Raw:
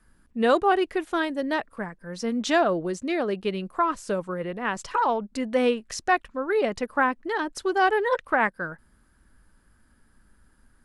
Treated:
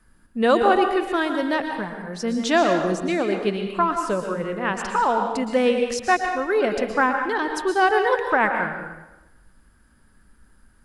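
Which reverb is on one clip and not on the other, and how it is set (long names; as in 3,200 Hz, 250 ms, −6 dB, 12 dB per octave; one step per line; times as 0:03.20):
dense smooth reverb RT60 1 s, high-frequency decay 0.9×, pre-delay 105 ms, DRR 4.5 dB
level +2.5 dB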